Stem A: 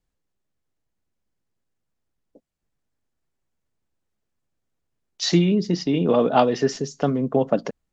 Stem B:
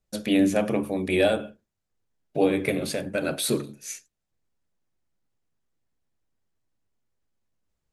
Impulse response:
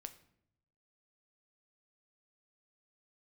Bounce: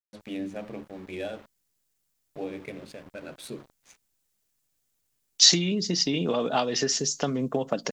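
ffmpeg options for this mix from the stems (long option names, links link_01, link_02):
-filter_complex "[0:a]acompressor=threshold=-20dB:ratio=6,crystalizer=i=6.5:c=0,adelay=200,volume=-3.5dB[link_01];[1:a]equalizer=frequency=10000:width=0.87:gain=4.5,aeval=exprs='val(0)*gte(abs(val(0)),0.0251)':channel_layout=same,adynamicsmooth=sensitivity=3:basefreq=3200,volume=-13.5dB[link_02];[link_01][link_02]amix=inputs=2:normalize=0"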